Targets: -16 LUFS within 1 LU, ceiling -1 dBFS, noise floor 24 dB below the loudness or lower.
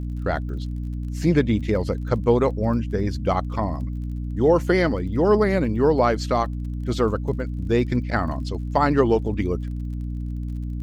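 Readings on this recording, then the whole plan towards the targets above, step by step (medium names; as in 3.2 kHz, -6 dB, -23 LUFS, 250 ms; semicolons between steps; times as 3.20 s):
tick rate 34 per s; hum 60 Hz; highest harmonic 300 Hz; hum level -26 dBFS; loudness -23.0 LUFS; peak level -5.0 dBFS; loudness target -16.0 LUFS
-> de-click; hum notches 60/120/180/240/300 Hz; trim +7 dB; peak limiter -1 dBFS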